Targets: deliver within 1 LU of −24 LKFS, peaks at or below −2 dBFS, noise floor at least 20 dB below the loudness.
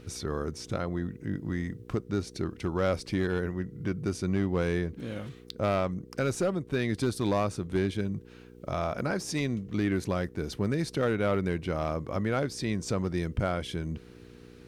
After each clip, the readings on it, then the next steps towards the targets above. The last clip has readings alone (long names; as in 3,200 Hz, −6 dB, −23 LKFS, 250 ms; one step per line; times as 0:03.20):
share of clipped samples 0.7%; peaks flattened at −20.0 dBFS; mains hum 60 Hz; hum harmonics up to 480 Hz; level of the hum −54 dBFS; integrated loudness −31.0 LKFS; sample peak −20.0 dBFS; target loudness −24.0 LKFS
→ clipped peaks rebuilt −20 dBFS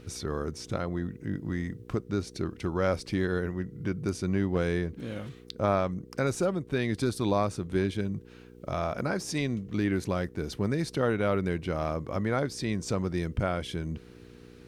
share of clipped samples 0.0%; mains hum 60 Hz; hum harmonics up to 480 Hz; level of the hum −54 dBFS
→ hum removal 60 Hz, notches 8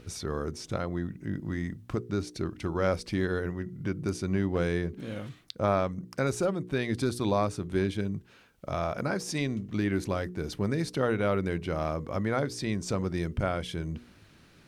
mains hum none found; integrated loudness −31.0 LKFS; sample peak −13.0 dBFS; target loudness −24.0 LKFS
→ level +7 dB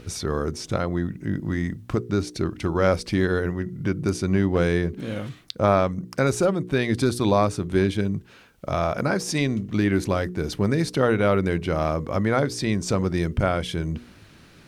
integrated loudness −24.0 LKFS; sample peak −6.0 dBFS; background noise floor −50 dBFS